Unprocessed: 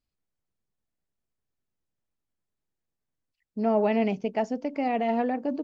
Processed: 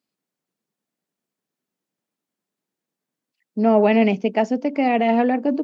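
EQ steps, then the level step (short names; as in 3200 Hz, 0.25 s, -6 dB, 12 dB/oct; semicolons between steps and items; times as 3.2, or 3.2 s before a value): HPF 190 Hz 24 dB/oct; dynamic EQ 2500 Hz, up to +5 dB, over -45 dBFS, Q 1.2; low shelf 270 Hz +6.5 dB; +6.0 dB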